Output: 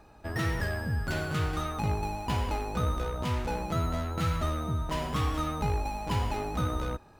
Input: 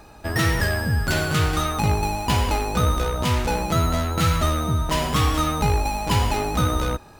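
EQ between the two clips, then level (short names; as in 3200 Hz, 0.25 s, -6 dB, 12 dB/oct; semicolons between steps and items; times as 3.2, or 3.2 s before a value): high shelf 3100 Hz -7.5 dB; -8.5 dB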